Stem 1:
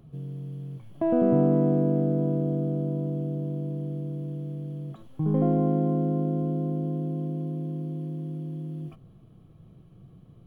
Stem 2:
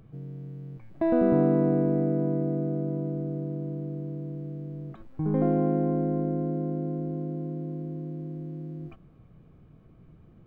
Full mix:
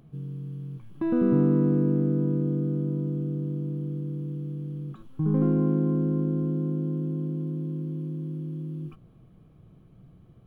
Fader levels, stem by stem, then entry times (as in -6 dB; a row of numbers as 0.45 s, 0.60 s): -3.5 dB, -4.5 dB; 0.00 s, 0.00 s